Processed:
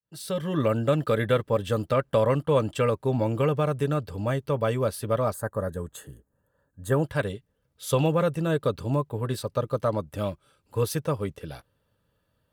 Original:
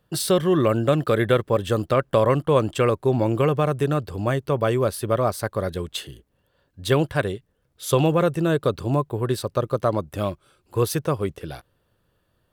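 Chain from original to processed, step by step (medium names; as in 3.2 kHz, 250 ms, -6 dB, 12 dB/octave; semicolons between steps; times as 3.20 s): fade-in on the opening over 0.60 s; time-frequency box 5.33–7.03 s, 1.9–6.3 kHz -15 dB; comb of notches 360 Hz; trim -3 dB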